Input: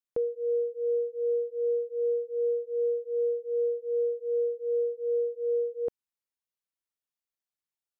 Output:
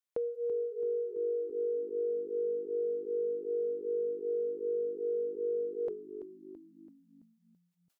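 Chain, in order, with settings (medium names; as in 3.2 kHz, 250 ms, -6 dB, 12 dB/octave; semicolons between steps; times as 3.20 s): bass shelf 230 Hz -9 dB; compression, threshold -31 dBFS, peak gain reduction 4.5 dB; frequency-shifting echo 333 ms, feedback 52%, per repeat -50 Hz, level -11 dB; decay stretcher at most 130 dB/s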